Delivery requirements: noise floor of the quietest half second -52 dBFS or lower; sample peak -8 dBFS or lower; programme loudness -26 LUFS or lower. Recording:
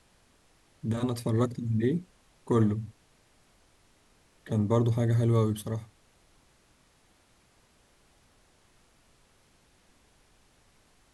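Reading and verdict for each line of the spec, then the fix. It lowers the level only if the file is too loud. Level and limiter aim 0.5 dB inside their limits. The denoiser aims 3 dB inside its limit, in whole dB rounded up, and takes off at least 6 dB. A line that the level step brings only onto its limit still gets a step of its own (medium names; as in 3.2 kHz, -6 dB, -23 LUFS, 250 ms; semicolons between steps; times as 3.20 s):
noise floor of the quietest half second -64 dBFS: pass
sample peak -12.0 dBFS: pass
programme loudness -28.5 LUFS: pass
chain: none needed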